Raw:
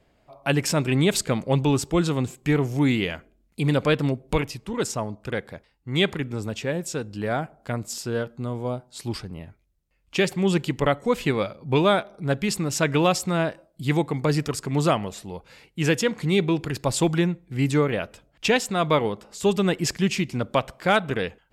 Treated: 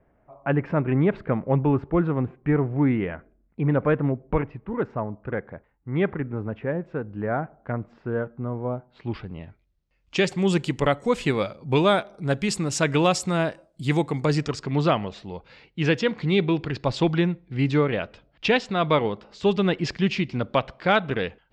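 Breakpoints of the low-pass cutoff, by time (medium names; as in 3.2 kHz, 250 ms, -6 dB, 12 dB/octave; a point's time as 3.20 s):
low-pass 24 dB/octave
8.70 s 1.8 kHz
9.36 s 3.8 kHz
10.56 s 9.4 kHz
14.20 s 9.4 kHz
14.75 s 4.6 kHz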